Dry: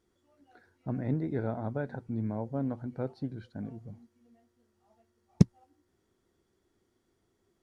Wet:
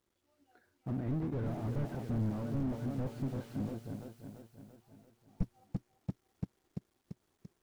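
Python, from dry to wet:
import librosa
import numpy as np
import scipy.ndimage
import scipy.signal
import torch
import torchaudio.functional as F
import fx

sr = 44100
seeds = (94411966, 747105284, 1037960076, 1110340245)

y = fx.law_mismatch(x, sr, coded='A')
y = fx.rider(y, sr, range_db=4, speed_s=0.5)
y = fx.dmg_noise_colour(y, sr, seeds[0], colour='white', level_db=-56.0, at=(1.46, 3.73), fade=0.02)
y = fx.echo_feedback(y, sr, ms=340, feedback_pct=53, wet_db=-10.0)
y = fx.slew_limit(y, sr, full_power_hz=5.4)
y = F.gain(torch.from_numpy(y), 1.0).numpy()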